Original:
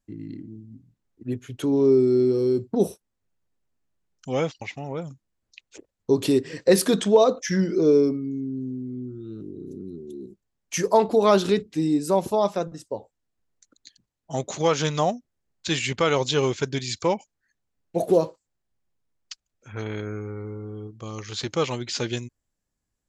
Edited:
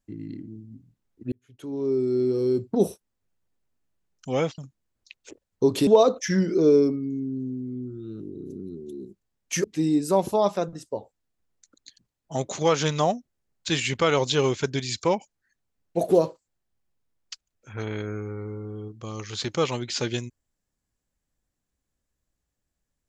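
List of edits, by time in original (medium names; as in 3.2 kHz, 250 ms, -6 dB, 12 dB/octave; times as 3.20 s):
1.32–2.69 s: fade in
4.58–5.05 s: delete
6.34–7.08 s: delete
10.85–11.63 s: delete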